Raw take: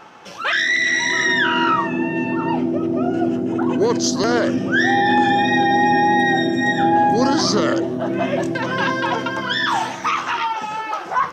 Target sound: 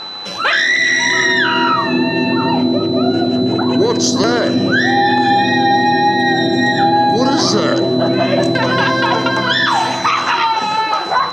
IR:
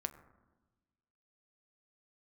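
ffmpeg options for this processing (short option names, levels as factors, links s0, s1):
-filter_complex "[0:a]acompressor=threshold=0.112:ratio=6,aeval=exprs='val(0)+0.02*sin(2*PI*4000*n/s)':c=same,asplit=2[s0][s1];[1:a]atrim=start_sample=2205,asetrate=22050,aresample=44100[s2];[s1][s2]afir=irnorm=-1:irlink=0,volume=2.11[s3];[s0][s3]amix=inputs=2:normalize=0,volume=0.708"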